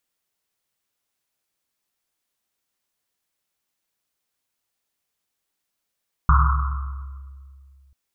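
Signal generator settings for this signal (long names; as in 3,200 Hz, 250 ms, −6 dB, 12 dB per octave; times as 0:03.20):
drum after Risset length 1.64 s, pitch 68 Hz, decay 2.51 s, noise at 1,200 Hz, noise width 360 Hz, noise 35%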